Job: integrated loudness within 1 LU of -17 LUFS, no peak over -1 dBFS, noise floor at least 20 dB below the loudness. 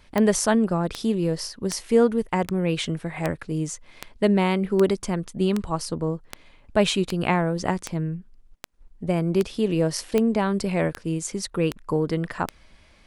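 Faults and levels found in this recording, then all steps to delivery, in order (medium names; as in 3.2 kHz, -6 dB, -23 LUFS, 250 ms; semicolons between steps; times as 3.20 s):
clicks found 17; loudness -24.5 LUFS; peak level -6.0 dBFS; loudness target -17.0 LUFS
-> de-click; trim +7.5 dB; peak limiter -1 dBFS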